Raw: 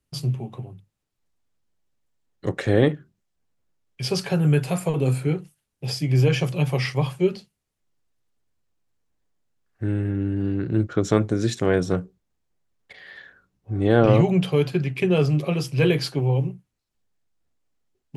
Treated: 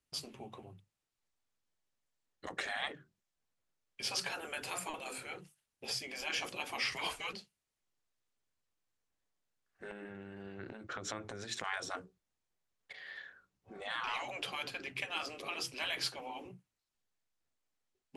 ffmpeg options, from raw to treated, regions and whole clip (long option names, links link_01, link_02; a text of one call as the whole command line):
ffmpeg -i in.wav -filter_complex "[0:a]asettb=1/sr,asplit=3[link_01][link_02][link_03];[link_01]atrim=end=6.924[link_04];[link_02]atrim=start=6.92:end=7.33,asetpts=PTS-STARTPTS,afade=type=in:duration=0.004:curve=qsin,afade=type=out:start_time=0.406:duration=0.004:curve=qsin,acontrast=74,afreqshift=-100[link_05];[link_03]atrim=start=7.326[link_06];[link_04][link_05]acrossfade=duration=0.004:curve1=hsin:curve2=qsin[link_07];[link_07][link_06]acrossfade=duration=0.004:curve1=qsin:curve2=hsin,asettb=1/sr,asplit=3[link_08][link_09][link_10];[link_08]atrim=end=9.914[link_11];[link_09]atrim=start=9.91:end=11.64,asetpts=PTS-STARTPTS,afade=type=in:duration=0.004:curve=qsin,afade=type=out:start_time=1.726:duration=0.004:curve=qsin,equalizer=frequency=1200:width=0.32:gain=5.5,acompressor=threshold=-27dB:ratio=6:attack=3.2:release=140:knee=1:detection=peak[link_12];[link_10]atrim=start=11.636[link_13];[link_11][link_12]acrossfade=duration=0.004:curve1=hsin:curve2=qsin[link_14];[link_14][link_13]acrossfade=duration=0.004:curve1=qsin:curve2=hsin,lowpass=11000,afftfilt=real='re*lt(hypot(re,im),0.178)':imag='im*lt(hypot(re,im),0.178)':win_size=1024:overlap=0.75,lowshelf=frequency=450:gain=-10,volume=-4dB" out.wav